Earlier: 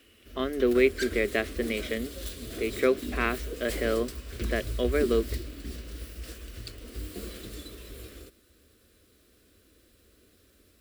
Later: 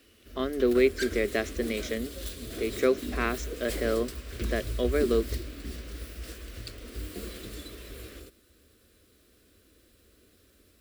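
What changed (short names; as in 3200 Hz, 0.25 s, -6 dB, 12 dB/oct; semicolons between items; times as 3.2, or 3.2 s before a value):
speech: remove synth low-pass 3000 Hz, resonance Q 1.5; second sound +5.5 dB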